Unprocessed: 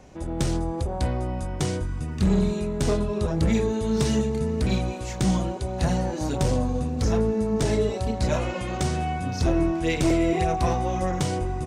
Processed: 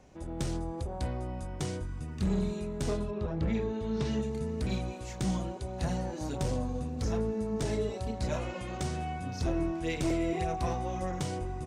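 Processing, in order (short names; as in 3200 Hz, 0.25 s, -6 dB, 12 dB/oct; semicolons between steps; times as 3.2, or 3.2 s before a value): 3.1–4.21 LPF 2800 Hz -> 4600 Hz 12 dB/oct; gain -8.5 dB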